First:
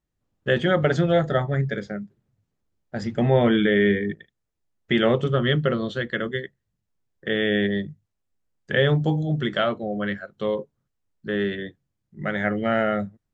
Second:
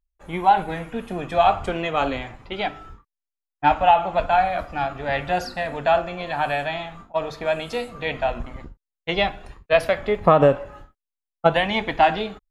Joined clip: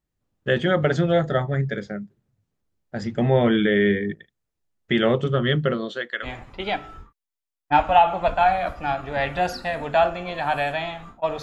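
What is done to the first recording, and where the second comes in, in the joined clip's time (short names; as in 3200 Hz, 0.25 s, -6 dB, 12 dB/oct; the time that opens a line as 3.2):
first
5.73–6.28 HPF 160 Hz -> 1100 Hz
6.25 switch to second from 2.17 s, crossfade 0.06 s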